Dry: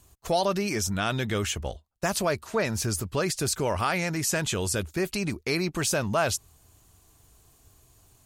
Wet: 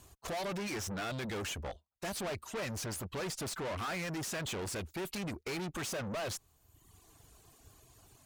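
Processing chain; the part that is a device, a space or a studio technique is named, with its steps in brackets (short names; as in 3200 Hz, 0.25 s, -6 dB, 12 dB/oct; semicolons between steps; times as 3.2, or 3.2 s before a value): reverb removal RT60 0.82 s; tube preamp driven hard (tube stage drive 39 dB, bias 0.25; low shelf 120 Hz -6 dB; high shelf 5800 Hz -5.5 dB); gain +4 dB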